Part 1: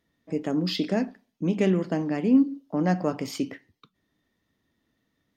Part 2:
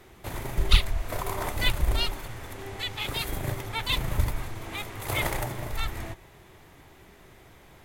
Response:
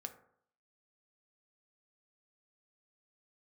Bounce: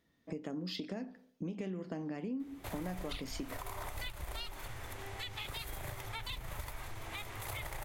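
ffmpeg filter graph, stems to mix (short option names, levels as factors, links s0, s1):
-filter_complex "[0:a]acompressor=threshold=0.0355:ratio=3,volume=0.708,asplit=2[s0][s1];[s1]volume=0.473[s2];[1:a]acrossover=split=120|500[s3][s4][s5];[s3]acompressor=threshold=0.0224:ratio=4[s6];[s4]acompressor=threshold=0.00224:ratio=4[s7];[s5]acompressor=threshold=0.0224:ratio=4[s8];[s6][s7][s8]amix=inputs=3:normalize=0,adelay=2400,volume=0.794[s9];[2:a]atrim=start_sample=2205[s10];[s2][s10]afir=irnorm=-1:irlink=0[s11];[s0][s9][s11]amix=inputs=3:normalize=0,acompressor=threshold=0.00891:ratio=2.5"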